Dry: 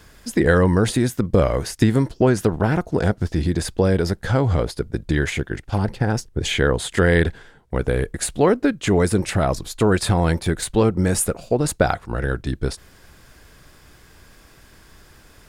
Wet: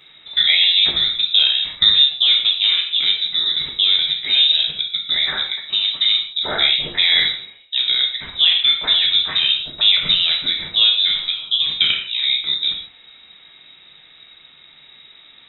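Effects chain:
voice inversion scrambler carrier 3,800 Hz
reverb whose tail is shaped and stops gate 200 ms falling, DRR −0.5 dB
level −1.5 dB

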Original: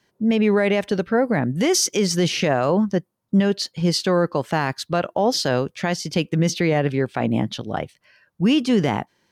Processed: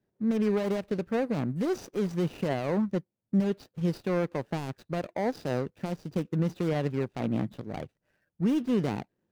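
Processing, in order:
running median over 41 samples
level −7.5 dB

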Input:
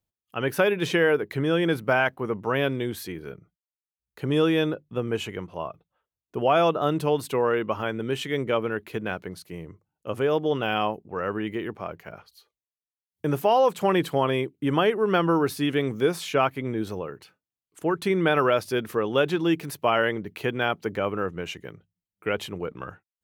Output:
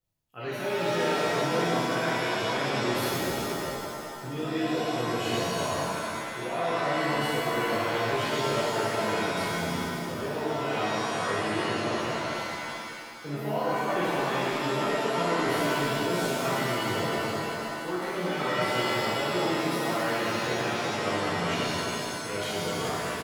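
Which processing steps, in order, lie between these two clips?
reversed playback
downward compressor 6 to 1, threshold −33 dBFS, peak gain reduction 16 dB
reversed playback
slap from a distant wall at 65 metres, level −7 dB
reverb with rising layers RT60 2.2 s, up +7 semitones, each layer −2 dB, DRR −10.5 dB
level −5.5 dB

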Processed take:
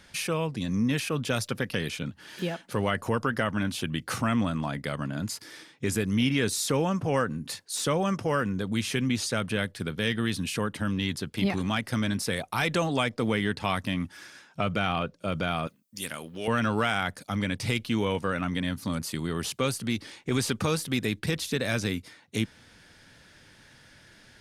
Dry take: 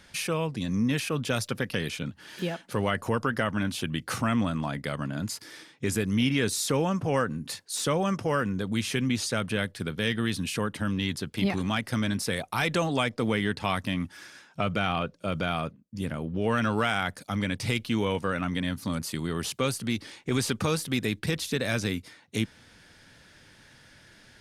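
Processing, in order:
0:15.67–0:16.48: spectral tilt +4.5 dB per octave

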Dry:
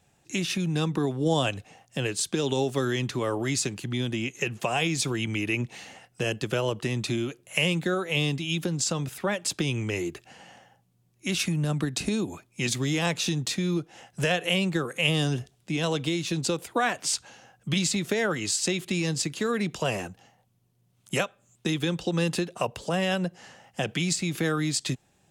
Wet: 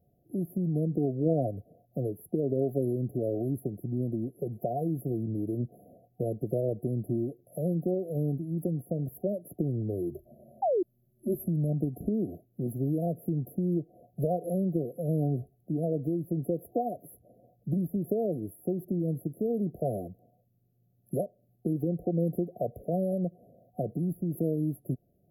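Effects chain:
brick-wall band-stop 740–11,000 Hz
0:10.10–0:11.48: EQ curve with evenly spaced ripples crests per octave 1.4, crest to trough 17 dB
0:10.62–0:10.83: sound drawn into the spectrogram fall 330–840 Hz −24 dBFS
level −1.5 dB

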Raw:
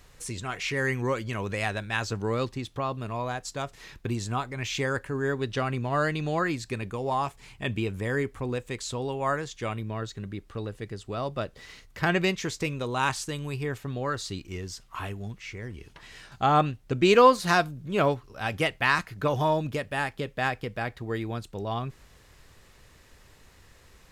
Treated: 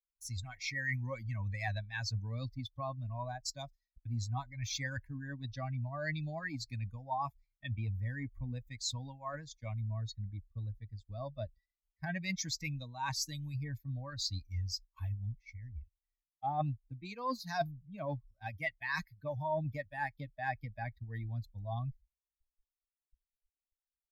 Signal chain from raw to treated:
spectral dynamics exaggerated over time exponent 2
downward expander −49 dBFS
reversed playback
downward compressor 8 to 1, threshold −39 dBFS, peak gain reduction 24.5 dB
reversed playback
phaser with its sweep stopped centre 2,000 Hz, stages 8
multiband upward and downward expander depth 40%
level +7 dB

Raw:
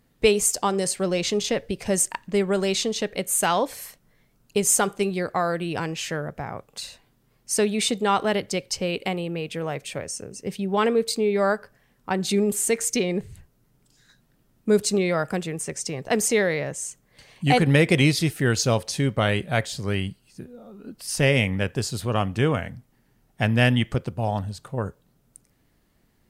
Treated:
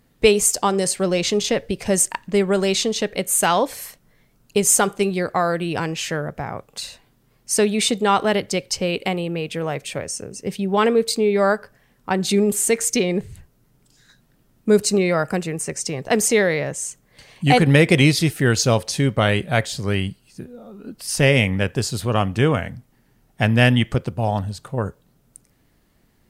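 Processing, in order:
0:14.76–0:15.81: notch filter 3,400 Hz, Q 7
level +4 dB

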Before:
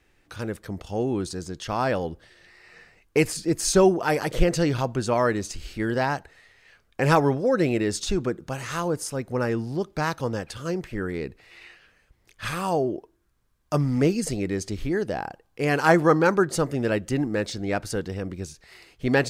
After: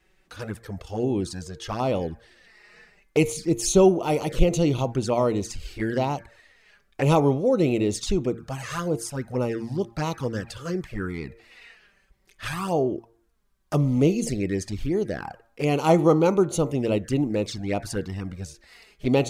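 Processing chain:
hum removal 115.7 Hz, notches 22
flanger swept by the level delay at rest 5.5 ms, full sweep at −21.5 dBFS
level +2 dB

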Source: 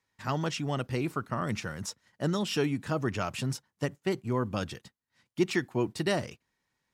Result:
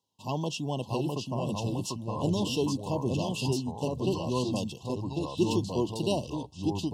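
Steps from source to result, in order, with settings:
high-pass filter 100 Hz
delay with pitch and tempo change per echo 601 ms, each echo −2 semitones, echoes 3
linear-phase brick-wall band-stop 1,100–2,600 Hz

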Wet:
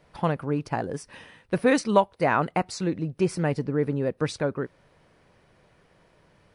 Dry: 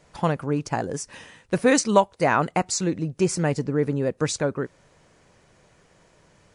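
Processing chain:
parametric band 7,000 Hz −14 dB 0.62 octaves
level −2 dB

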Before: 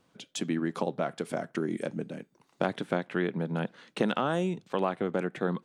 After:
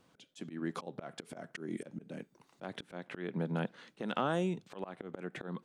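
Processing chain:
volume swells 236 ms
in parallel at −2.5 dB: downward compressor, threshold −42 dBFS, peak gain reduction 17 dB
on the sum: level −4.5 dB

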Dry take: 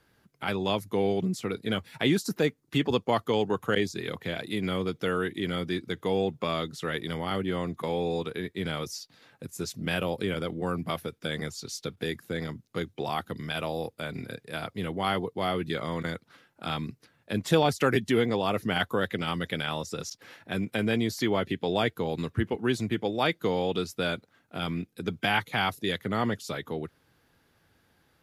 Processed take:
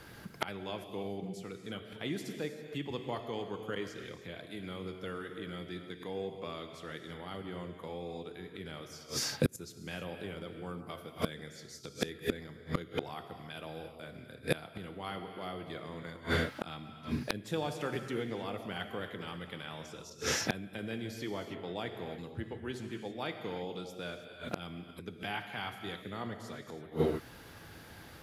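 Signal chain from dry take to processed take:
reverb whose tail is shaped and stops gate 350 ms flat, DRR 5.5 dB
gate with flip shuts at −29 dBFS, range −27 dB
wave folding −29.5 dBFS
level +14 dB

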